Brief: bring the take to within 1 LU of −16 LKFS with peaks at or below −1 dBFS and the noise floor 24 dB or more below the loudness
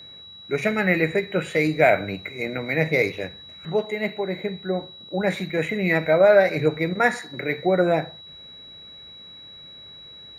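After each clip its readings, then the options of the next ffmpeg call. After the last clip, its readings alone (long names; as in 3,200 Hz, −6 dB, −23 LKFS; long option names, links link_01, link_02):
interfering tone 3,900 Hz; level of the tone −41 dBFS; integrated loudness −22.5 LKFS; sample peak −4.5 dBFS; target loudness −16.0 LKFS
→ -af "bandreject=frequency=3900:width=30"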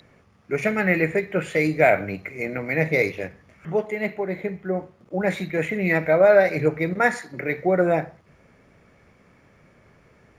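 interfering tone none found; integrated loudness −22.5 LKFS; sample peak −4.5 dBFS; target loudness −16.0 LKFS
→ -af "volume=6.5dB,alimiter=limit=-1dB:level=0:latency=1"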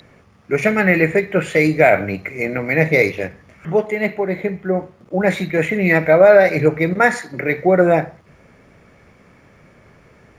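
integrated loudness −16.5 LKFS; sample peak −1.0 dBFS; background noise floor −50 dBFS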